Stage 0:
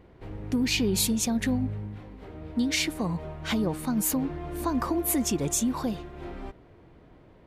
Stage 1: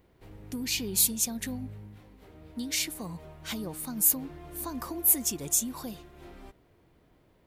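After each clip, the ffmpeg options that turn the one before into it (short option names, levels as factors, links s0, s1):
-af "aemphasis=mode=production:type=75fm,volume=0.355"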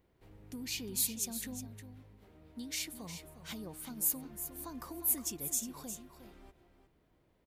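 -af "aecho=1:1:358:0.299,volume=0.376"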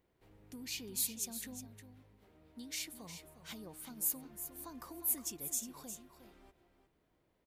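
-af "lowshelf=f=210:g=-5,volume=0.708"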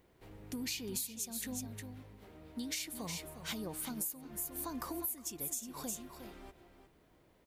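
-af "acompressor=threshold=0.00562:ratio=20,volume=2.99"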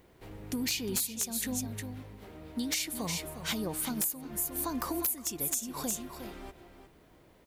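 -af "aeval=exprs='(mod(22.4*val(0)+1,2)-1)/22.4':c=same,volume=2.24"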